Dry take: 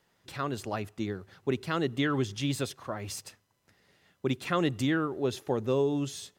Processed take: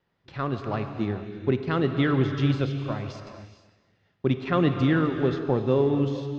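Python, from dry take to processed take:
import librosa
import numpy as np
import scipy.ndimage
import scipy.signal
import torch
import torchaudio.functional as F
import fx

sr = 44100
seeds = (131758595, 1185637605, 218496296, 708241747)

p1 = fx.law_mismatch(x, sr, coded='A')
p2 = scipy.signal.sosfilt(scipy.signal.bessel(8, 3200.0, 'lowpass', norm='mag', fs=sr, output='sos'), p1)
p3 = fx.low_shelf(p2, sr, hz=300.0, db=5.5)
p4 = p3 + fx.echo_feedback(p3, sr, ms=253, feedback_pct=31, wet_db=-17.0, dry=0)
p5 = fx.rev_gated(p4, sr, seeds[0], gate_ms=490, shape='flat', drr_db=6.5)
y = p5 * librosa.db_to_amplitude(3.5)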